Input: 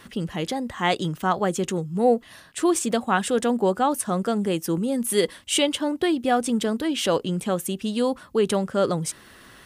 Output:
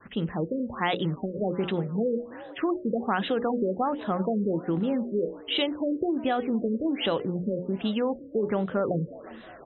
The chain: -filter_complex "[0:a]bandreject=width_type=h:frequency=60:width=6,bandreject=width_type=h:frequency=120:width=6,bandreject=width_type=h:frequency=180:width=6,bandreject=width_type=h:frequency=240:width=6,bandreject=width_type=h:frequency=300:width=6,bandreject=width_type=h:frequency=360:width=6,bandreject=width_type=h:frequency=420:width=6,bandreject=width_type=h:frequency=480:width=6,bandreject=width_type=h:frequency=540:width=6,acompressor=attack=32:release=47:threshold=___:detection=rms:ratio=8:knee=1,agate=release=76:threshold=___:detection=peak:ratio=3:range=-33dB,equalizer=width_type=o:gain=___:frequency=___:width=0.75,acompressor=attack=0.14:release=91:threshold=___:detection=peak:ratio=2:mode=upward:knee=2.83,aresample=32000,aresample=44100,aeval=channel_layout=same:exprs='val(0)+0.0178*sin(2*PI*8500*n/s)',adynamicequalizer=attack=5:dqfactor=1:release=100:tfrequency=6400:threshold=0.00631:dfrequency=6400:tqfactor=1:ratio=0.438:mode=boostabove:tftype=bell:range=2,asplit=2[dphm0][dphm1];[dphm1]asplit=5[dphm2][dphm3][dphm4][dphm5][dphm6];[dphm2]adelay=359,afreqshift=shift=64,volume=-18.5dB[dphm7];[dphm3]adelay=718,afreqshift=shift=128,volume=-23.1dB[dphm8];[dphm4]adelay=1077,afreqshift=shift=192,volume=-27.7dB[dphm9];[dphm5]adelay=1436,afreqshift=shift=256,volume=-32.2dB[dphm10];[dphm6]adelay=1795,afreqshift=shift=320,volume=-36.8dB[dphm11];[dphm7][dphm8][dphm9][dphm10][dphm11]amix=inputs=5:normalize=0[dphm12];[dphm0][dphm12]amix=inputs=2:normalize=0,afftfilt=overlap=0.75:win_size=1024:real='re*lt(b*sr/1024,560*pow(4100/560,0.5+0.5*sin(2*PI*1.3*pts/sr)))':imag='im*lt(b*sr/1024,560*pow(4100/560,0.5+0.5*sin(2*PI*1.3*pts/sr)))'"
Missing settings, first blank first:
-25dB, -45dB, -3.5, 63, -39dB